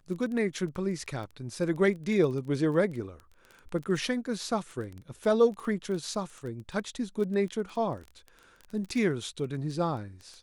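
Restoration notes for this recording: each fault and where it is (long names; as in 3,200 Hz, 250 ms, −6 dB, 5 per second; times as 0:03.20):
surface crackle 14 per second −35 dBFS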